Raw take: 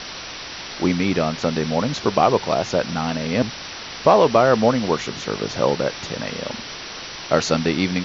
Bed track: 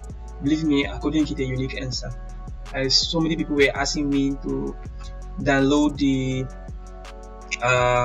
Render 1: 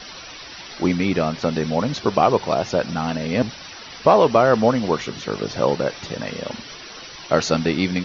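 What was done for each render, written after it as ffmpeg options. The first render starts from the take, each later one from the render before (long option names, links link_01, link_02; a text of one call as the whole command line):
ffmpeg -i in.wav -af "afftdn=noise_reduction=11:noise_floor=-34" out.wav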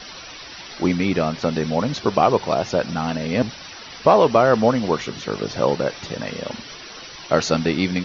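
ffmpeg -i in.wav -af anull out.wav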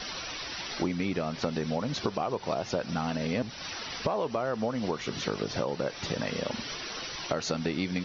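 ffmpeg -i in.wav -af "alimiter=limit=-8dB:level=0:latency=1:release=202,acompressor=threshold=-27dB:ratio=6" out.wav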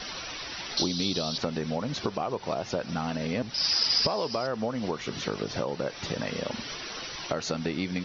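ffmpeg -i in.wav -filter_complex "[0:a]asettb=1/sr,asplit=3[link_01][link_02][link_03];[link_01]atrim=end=0.774[link_04];[link_02]atrim=start=0.77:end=1.38,asetpts=PTS-STARTPTS,afade=type=in:duration=0.004:curve=qsin,afade=type=out:start_time=0.606:duration=0.004:curve=qsin,highshelf=frequency=2900:width_type=q:width=3:gain=11[link_05];[link_03]atrim=start=1.376[link_06];[link_04][link_05]acrossfade=duration=0.004:curve1=hsin:curve2=qsin[link_07];[link_07][link_06]acrossfade=duration=0.004:curve1=qsin:curve2=hsin,asettb=1/sr,asplit=3[link_08][link_09][link_10];[link_08]atrim=end=3.544[link_11];[link_09]atrim=start=3.54:end=4.47,asetpts=PTS-STARTPTS,afade=type=in:duration=0.004:curve=qsin,afade=type=out:start_time=0.926:duration=0.004:curve=qsin,lowpass=frequency=5000:width_type=q:width=16[link_12];[link_10]atrim=start=4.466[link_13];[link_11][link_12]acrossfade=duration=0.004:curve1=hsin:curve2=qsin[link_14];[link_14][link_13]acrossfade=duration=0.004:curve1=qsin:curve2=hsin" out.wav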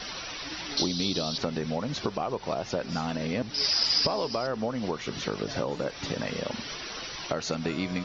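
ffmpeg -i in.wav -i bed.wav -filter_complex "[1:a]volume=-25dB[link_01];[0:a][link_01]amix=inputs=2:normalize=0" out.wav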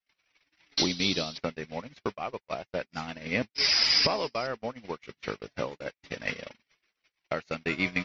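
ffmpeg -i in.wav -af "equalizer=frequency=2200:width_type=o:width=0.78:gain=11.5,agate=range=-60dB:threshold=-27dB:ratio=16:detection=peak" out.wav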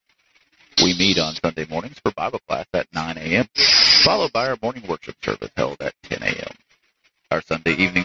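ffmpeg -i in.wav -af "volume=11dB,alimiter=limit=-3dB:level=0:latency=1" out.wav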